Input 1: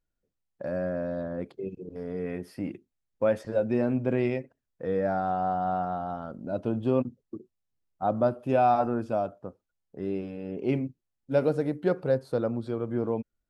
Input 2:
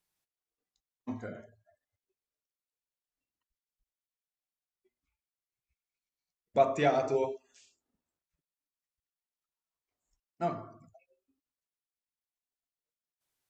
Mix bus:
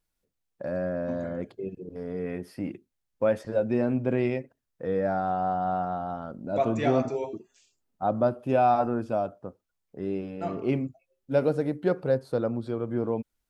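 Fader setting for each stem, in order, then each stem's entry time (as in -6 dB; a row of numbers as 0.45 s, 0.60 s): +0.5 dB, -1.5 dB; 0.00 s, 0.00 s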